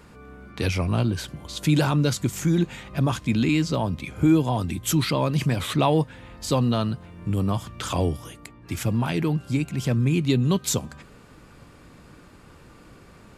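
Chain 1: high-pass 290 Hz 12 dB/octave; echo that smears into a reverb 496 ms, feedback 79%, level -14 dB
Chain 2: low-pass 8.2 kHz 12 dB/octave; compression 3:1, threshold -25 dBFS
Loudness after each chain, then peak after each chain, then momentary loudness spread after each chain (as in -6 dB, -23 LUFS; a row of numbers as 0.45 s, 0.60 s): -28.0 LUFS, -29.5 LUFS; -9.0 dBFS, -14.0 dBFS; 17 LU, 9 LU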